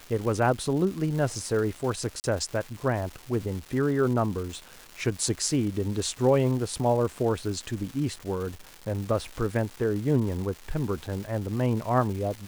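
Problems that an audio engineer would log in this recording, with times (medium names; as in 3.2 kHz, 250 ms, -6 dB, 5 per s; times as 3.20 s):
crackle 560 per s -35 dBFS
2.20–2.24 s: dropout 39 ms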